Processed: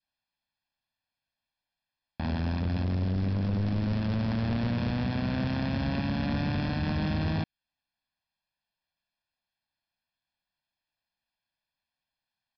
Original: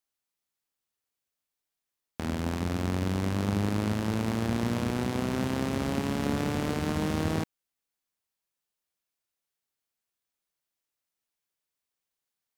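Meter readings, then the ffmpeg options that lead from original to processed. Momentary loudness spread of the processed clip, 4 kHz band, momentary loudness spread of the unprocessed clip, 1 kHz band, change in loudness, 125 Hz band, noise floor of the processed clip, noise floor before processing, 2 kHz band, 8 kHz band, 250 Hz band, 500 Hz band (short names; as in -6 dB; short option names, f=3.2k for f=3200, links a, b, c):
3 LU, -1.0 dB, 3 LU, -3.0 dB, 0.0 dB, +2.5 dB, under -85 dBFS, under -85 dBFS, -1.0 dB, under -20 dB, -0.5 dB, -5.0 dB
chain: -af "adynamicequalizer=threshold=0.00447:dfrequency=840:dqfactor=1.3:tfrequency=840:tqfactor=1.3:attack=5:release=100:ratio=0.375:range=3:mode=cutabove:tftype=bell,aecho=1:1:1.2:0.97,aresample=11025,volume=24.5dB,asoftclip=hard,volume=-24.5dB,aresample=44100"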